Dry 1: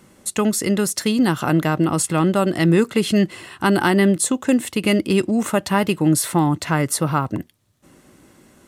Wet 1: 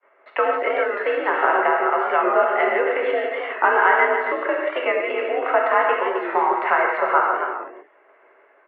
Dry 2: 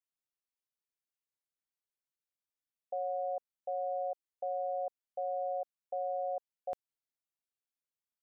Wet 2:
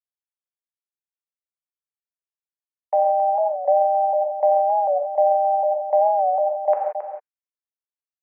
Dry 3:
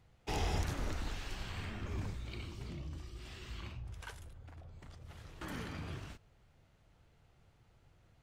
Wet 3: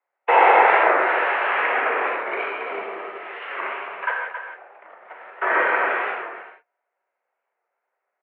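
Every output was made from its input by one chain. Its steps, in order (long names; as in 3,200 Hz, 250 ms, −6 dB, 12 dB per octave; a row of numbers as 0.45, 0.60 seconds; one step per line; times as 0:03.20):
downward expander −43 dBFS
downward compressor 4 to 1, threshold −20 dBFS
frequency shifter −13 Hz
high-frequency loss of the air 120 metres
on a send: single-tap delay 271 ms −8.5 dB
on the sum: reverb whose tail is shaped and stops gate 200 ms flat, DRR −1 dB
single-sideband voice off tune +69 Hz 460–2,200 Hz
wow of a warped record 45 rpm, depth 100 cents
loudness normalisation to −20 LKFS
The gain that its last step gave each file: +8.5, +19.5, +27.0 decibels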